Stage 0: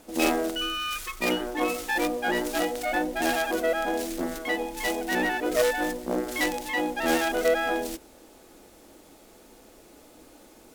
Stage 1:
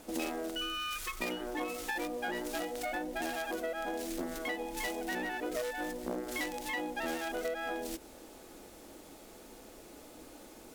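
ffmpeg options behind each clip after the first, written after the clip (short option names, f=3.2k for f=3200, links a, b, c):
-af "acompressor=threshold=-34dB:ratio=6"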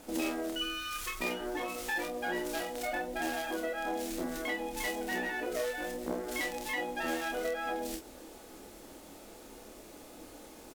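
-af "aecho=1:1:28|47:0.596|0.335"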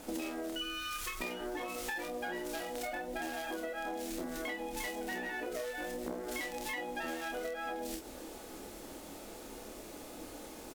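-af "acompressor=threshold=-39dB:ratio=6,volume=3dB"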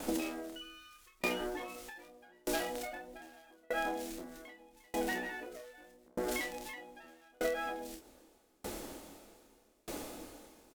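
-af "aeval=exprs='val(0)*pow(10,-35*if(lt(mod(0.81*n/s,1),2*abs(0.81)/1000),1-mod(0.81*n/s,1)/(2*abs(0.81)/1000),(mod(0.81*n/s,1)-2*abs(0.81)/1000)/(1-2*abs(0.81)/1000))/20)':c=same,volume=8dB"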